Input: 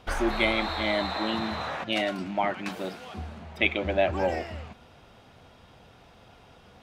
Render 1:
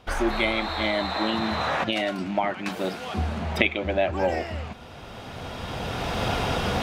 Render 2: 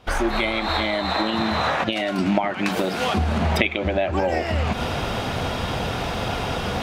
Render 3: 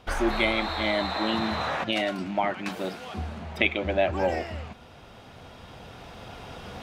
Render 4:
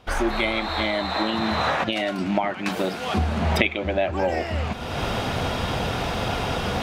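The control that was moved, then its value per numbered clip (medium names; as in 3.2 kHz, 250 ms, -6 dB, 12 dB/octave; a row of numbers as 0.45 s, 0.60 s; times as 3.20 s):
recorder AGC, rising by: 13 dB/s, 84 dB/s, 5 dB/s, 34 dB/s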